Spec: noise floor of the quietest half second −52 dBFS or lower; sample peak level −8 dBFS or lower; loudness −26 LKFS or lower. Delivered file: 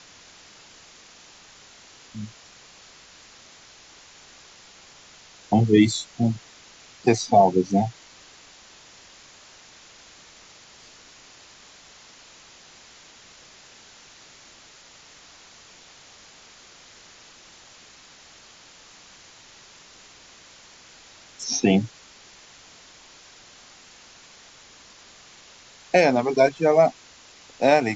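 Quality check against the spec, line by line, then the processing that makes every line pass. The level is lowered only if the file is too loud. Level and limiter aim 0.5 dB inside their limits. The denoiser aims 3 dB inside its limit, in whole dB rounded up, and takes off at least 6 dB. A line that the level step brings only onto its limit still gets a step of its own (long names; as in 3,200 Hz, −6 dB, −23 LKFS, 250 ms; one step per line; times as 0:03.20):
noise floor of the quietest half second −50 dBFS: out of spec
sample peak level −5.5 dBFS: out of spec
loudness −21.0 LKFS: out of spec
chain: level −5.5 dB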